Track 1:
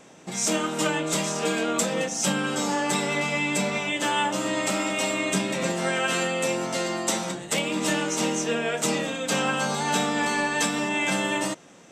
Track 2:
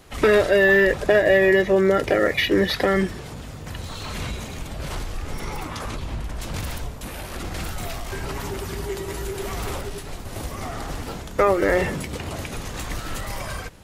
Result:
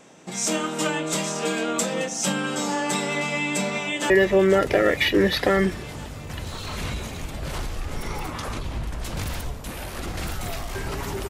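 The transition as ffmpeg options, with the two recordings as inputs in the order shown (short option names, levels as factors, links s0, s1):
-filter_complex "[0:a]apad=whole_dur=11.29,atrim=end=11.29,atrim=end=4.102[s0];[1:a]atrim=start=1.468:end=8.66[s1];[s0][s1]acrossfade=d=0.004:c1=hsin:c2=hsin,asplit=2[s2][s3];[s3]afade=t=in:st=3.69:d=0.01,afade=t=out:st=4.1:d=0.01,aecho=0:1:490|980|1470|1960|2450|2940|3430|3920|4410|4900|5390|5880:0.298538|0.223904|0.167928|0.125946|0.0944594|0.0708445|0.0531334|0.03985|0.0298875|0.0224157|0.0168117|0.0126088[s4];[s2][s4]amix=inputs=2:normalize=0"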